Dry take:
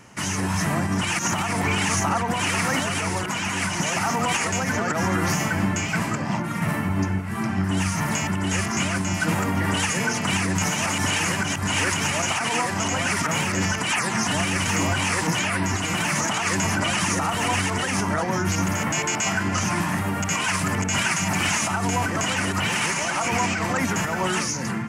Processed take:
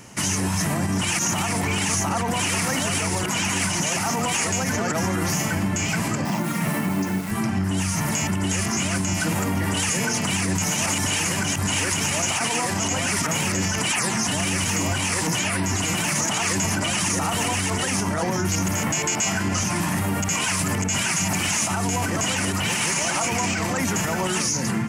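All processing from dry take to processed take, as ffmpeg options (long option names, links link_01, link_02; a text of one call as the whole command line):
ffmpeg -i in.wav -filter_complex "[0:a]asettb=1/sr,asplit=3[link_01][link_02][link_03];[link_01]atrim=end=6.254[link_04];[link_02]atrim=start=6.25:end=7.31,asetpts=PTS-STARTPTS,afade=type=in:duration=0.004:curve=qsin,afade=type=out:start_time=1.056:duration=0.004:curve=qsin,highpass=frequency=140:width=0.5412,highpass=frequency=140:width=1.3066,acrusher=bits=8:dc=4:mix=0:aa=0.000001[link_05];[link_03]atrim=start=7.306[link_06];[link_04][link_05]acrossfade=duration=0.004:curve1=hsin:curve2=qsin[link_07];[link_07][link_06]acrossfade=duration=0.004:curve1=qsin:curve2=hsin,equalizer=frequency=1400:width_type=o:width=1.5:gain=-4.5,alimiter=limit=-20dB:level=0:latency=1:release=57,highshelf=frequency=5700:gain=6,volume=4.5dB" out.wav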